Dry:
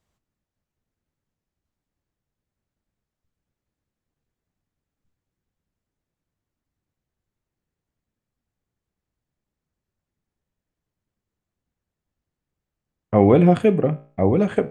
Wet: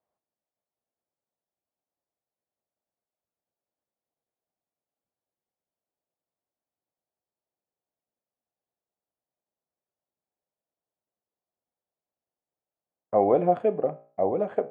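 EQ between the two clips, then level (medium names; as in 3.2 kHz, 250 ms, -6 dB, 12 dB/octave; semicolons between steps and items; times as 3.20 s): band-pass filter 670 Hz, Q 2.1; 0.0 dB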